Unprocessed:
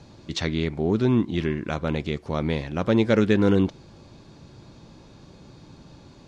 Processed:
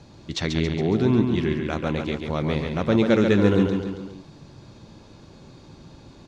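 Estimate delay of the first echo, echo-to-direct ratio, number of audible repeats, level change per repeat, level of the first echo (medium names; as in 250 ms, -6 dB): 138 ms, -4.0 dB, 4, -5.5 dB, -5.5 dB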